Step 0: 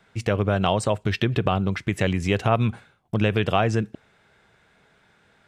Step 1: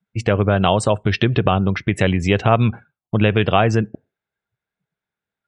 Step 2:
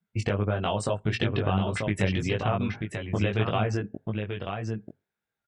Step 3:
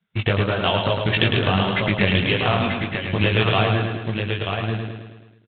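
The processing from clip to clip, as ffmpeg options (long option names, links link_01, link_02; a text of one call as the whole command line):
ffmpeg -i in.wav -af "afftdn=noise_reduction=33:noise_floor=-44,volume=5.5dB" out.wav
ffmpeg -i in.wav -filter_complex "[0:a]acompressor=threshold=-20dB:ratio=6,asplit=2[link_01][link_02];[link_02]aecho=0:1:937:0.501[link_03];[link_01][link_03]amix=inputs=2:normalize=0,flanger=delay=18:depth=2.8:speed=1.7" out.wav
ffmpeg -i in.wav -af "crystalizer=i=5:c=0,aresample=8000,acrusher=bits=3:mode=log:mix=0:aa=0.000001,aresample=44100,aecho=1:1:107|214|321|428|535|642|749:0.562|0.315|0.176|0.0988|0.0553|0.031|0.0173,volume=4dB" out.wav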